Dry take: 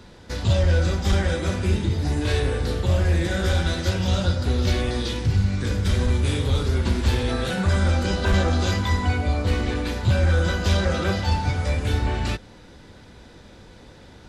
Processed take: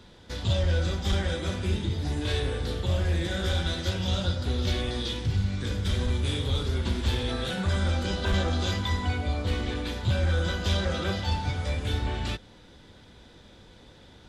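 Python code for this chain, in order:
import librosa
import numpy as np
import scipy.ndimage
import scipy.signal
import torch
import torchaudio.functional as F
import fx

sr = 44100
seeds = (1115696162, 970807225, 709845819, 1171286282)

y = fx.peak_eq(x, sr, hz=3400.0, db=7.5, octaves=0.34)
y = y * 10.0 ** (-6.0 / 20.0)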